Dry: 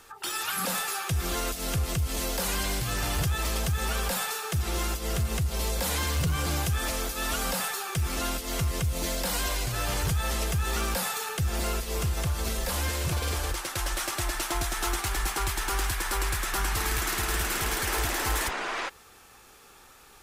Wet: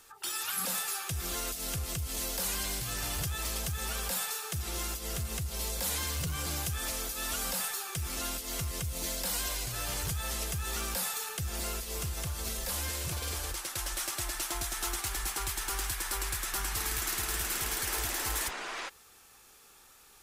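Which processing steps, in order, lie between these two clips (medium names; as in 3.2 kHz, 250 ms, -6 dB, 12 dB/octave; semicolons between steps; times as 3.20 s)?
treble shelf 3.5 kHz +8.5 dB; trim -8.5 dB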